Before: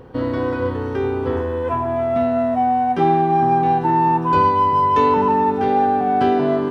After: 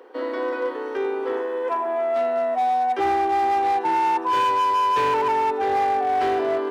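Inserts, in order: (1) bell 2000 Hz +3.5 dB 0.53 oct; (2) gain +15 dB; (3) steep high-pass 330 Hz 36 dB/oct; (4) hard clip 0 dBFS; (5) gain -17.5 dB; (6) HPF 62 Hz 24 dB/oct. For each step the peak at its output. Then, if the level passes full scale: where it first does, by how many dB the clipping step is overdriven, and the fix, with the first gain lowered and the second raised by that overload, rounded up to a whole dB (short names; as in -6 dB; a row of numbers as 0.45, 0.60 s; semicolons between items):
-4.0, +11.0, +9.5, 0.0, -17.5, -14.0 dBFS; step 2, 9.5 dB; step 2 +5 dB, step 5 -7.5 dB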